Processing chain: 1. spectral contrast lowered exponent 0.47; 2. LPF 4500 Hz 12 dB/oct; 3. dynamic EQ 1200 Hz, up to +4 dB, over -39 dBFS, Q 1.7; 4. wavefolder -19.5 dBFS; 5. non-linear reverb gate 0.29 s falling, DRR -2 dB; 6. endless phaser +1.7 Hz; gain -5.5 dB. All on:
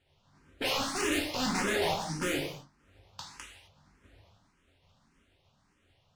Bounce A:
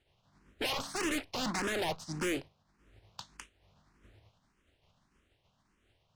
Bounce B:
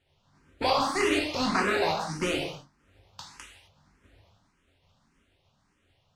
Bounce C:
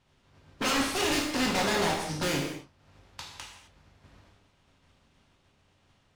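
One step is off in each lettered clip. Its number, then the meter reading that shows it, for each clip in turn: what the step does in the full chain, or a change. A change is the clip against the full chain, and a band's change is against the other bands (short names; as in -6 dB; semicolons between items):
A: 5, loudness change -4.0 LU; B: 4, 8 kHz band -5.5 dB; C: 6, loudness change +3.0 LU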